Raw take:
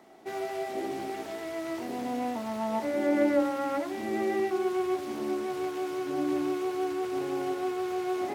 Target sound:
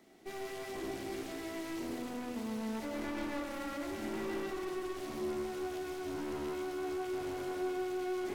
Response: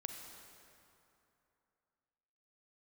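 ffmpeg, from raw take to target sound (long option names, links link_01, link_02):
-filter_complex "[0:a]equalizer=frequency=860:width=0.83:gain=-11.5,aeval=exprs='(tanh(89.1*val(0)+0.7)-tanh(0.7))/89.1':channel_layout=same[link_01];[1:a]atrim=start_sample=2205[link_02];[link_01][link_02]afir=irnorm=-1:irlink=0,volume=5.5dB"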